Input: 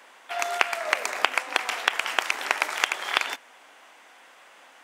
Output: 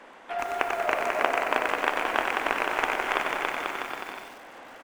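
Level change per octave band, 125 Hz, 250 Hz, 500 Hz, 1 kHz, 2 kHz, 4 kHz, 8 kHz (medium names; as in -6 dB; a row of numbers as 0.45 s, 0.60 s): no reading, +9.5 dB, +5.5 dB, +2.5 dB, -1.5 dB, -7.5 dB, -9.5 dB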